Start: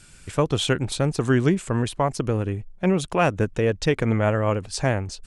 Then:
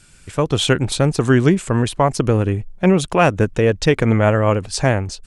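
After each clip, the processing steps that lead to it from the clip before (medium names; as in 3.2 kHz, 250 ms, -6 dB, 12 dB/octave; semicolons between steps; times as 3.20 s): level rider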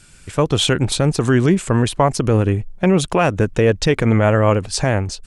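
peak limiter -6.5 dBFS, peak gain reduction 5 dB; trim +2 dB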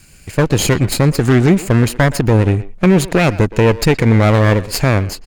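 comb filter that takes the minimum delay 0.43 ms; speakerphone echo 120 ms, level -15 dB; trim +3.5 dB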